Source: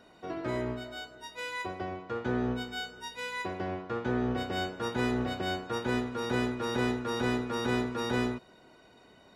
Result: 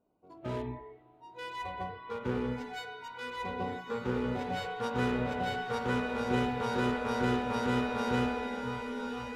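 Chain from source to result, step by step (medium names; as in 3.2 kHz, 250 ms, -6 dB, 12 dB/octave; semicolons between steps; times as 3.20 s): local Wiener filter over 25 samples; 0.62–1.17 s: brick-wall FIR low-pass 1.4 kHz; echo that smears into a reverb 1108 ms, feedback 52%, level -7 dB; spring tank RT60 3.2 s, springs 39/58 ms, chirp 40 ms, DRR 1 dB; spectral noise reduction 17 dB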